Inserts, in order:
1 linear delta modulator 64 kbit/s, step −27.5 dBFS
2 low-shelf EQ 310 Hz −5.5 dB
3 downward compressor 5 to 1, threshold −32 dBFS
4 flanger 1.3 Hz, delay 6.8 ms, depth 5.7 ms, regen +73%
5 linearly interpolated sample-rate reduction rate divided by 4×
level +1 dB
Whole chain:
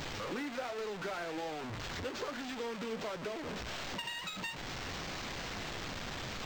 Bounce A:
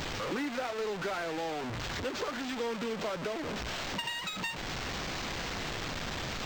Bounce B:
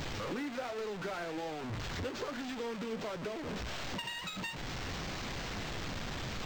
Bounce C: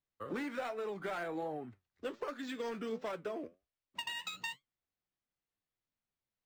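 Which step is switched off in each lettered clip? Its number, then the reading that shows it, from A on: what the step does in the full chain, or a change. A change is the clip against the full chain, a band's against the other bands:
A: 4, change in integrated loudness +4.5 LU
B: 2, 125 Hz band +4.5 dB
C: 1, 125 Hz band −7.0 dB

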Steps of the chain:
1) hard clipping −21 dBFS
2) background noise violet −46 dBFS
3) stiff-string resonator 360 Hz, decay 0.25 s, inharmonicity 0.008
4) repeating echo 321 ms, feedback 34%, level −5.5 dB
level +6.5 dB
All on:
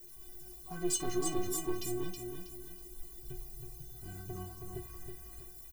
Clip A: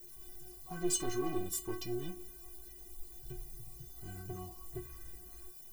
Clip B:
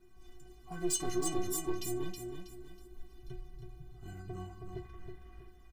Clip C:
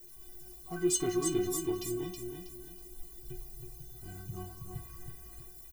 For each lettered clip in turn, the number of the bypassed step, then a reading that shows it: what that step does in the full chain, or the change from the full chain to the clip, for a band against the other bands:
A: 4, change in momentary loudness spread +1 LU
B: 2, change in momentary loudness spread +8 LU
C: 1, distortion level −9 dB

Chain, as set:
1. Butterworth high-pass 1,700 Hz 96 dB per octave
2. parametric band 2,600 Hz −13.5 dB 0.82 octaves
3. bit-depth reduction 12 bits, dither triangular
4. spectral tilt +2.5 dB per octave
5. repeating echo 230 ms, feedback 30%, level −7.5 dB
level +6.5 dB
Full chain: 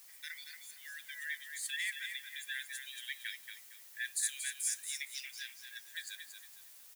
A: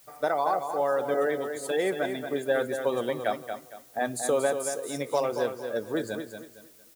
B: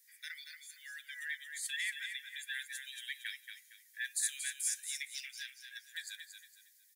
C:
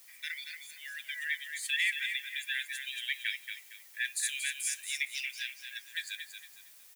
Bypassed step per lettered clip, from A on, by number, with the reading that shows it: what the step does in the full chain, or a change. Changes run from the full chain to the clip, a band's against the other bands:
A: 1, change in crest factor −8.0 dB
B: 3, distortion level −17 dB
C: 2, change in crest factor −4.0 dB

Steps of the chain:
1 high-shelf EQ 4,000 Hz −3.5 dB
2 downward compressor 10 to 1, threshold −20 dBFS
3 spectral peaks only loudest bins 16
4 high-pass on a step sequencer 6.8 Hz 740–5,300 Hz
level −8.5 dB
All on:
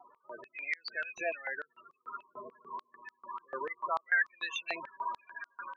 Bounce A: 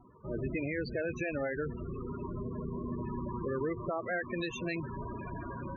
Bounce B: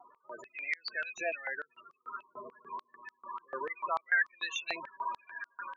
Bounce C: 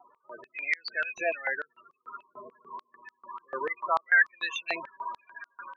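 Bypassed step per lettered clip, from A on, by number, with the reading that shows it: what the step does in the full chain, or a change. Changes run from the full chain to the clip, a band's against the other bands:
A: 4, 250 Hz band +25.5 dB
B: 1, 4 kHz band +2.0 dB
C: 2, average gain reduction 2.5 dB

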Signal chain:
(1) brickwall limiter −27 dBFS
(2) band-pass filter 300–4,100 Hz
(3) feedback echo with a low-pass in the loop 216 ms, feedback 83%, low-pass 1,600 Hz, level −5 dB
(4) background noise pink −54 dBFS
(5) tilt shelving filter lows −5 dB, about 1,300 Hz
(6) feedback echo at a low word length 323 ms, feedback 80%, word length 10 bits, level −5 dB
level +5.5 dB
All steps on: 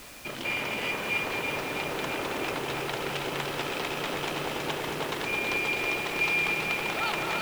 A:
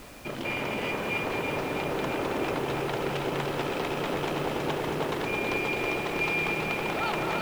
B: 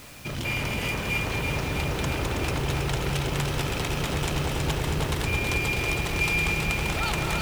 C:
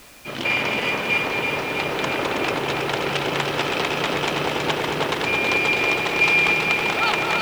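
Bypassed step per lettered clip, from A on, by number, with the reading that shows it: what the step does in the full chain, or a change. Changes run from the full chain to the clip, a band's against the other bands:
5, 8 kHz band −7.0 dB
2, 125 Hz band +13.5 dB
1, average gain reduction 7.5 dB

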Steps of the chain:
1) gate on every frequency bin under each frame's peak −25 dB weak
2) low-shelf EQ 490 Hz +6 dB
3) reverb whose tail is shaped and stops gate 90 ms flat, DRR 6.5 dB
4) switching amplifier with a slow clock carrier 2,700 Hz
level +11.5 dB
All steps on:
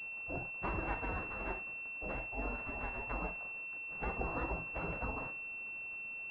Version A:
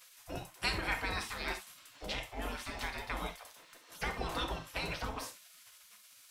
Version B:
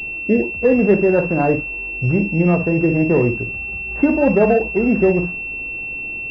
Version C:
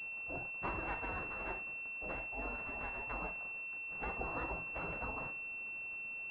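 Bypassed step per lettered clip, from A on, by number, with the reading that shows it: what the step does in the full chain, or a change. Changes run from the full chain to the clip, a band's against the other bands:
4, 1 kHz band +1.5 dB
1, 1 kHz band −12.0 dB
2, 2 kHz band +3.5 dB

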